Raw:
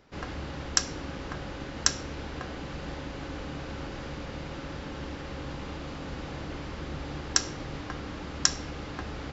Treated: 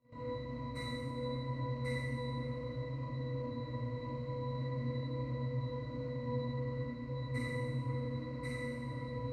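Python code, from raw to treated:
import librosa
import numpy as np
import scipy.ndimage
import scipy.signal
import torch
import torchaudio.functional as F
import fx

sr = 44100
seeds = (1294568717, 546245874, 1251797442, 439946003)

y = fx.partial_stretch(x, sr, pct=114)
y = fx.level_steps(y, sr, step_db=16)
y = fx.octave_resonator(y, sr, note='B', decay_s=0.34)
y = fx.rev_schroeder(y, sr, rt60_s=1.5, comb_ms=26, drr_db=-6.5)
y = y * 10.0 ** (17.5 / 20.0)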